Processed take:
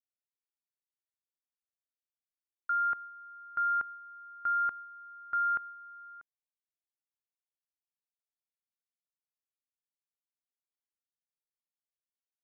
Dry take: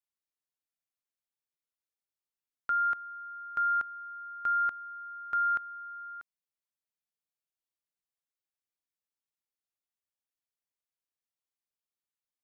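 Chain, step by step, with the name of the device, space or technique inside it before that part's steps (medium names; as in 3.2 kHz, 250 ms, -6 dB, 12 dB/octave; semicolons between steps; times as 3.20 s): hearing-loss simulation (low-pass 1.8 kHz 12 dB/octave; expander -40 dBFS)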